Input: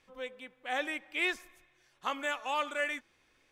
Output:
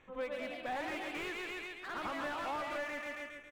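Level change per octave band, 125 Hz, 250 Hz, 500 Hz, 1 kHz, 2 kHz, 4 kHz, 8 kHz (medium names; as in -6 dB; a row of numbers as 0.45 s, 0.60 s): no reading, 0.0 dB, -1.0 dB, -3.0 dB, -5.5 dB, -6.0 dB, -5.5 dB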